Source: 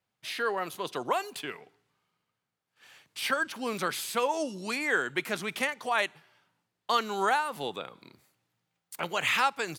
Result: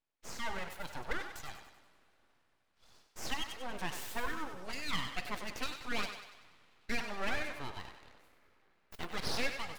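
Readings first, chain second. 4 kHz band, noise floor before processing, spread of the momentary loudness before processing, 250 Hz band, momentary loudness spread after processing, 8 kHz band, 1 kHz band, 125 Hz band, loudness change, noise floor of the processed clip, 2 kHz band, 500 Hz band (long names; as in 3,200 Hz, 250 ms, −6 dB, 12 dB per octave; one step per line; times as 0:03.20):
−6.0 dB, −84 dBFS, 12 LU, −7.0 dB, 15 LU, −7.0 dB, −12.5 dB, −2.0 dB, −9.5 dB, −74 dBFS, −9.0 dB, −12.5 dB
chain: expanding power law on the bin magnitudes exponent 1.5
coupled-rooms reverb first 0.55 s, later 4.4 s, from −18 dB, DRR 11.5 dB
full-wave rectification
feedback echo with a high-pass in the loop 96 ms, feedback 52%, high-pass 370 Hz, level −8 dB
level −6 dB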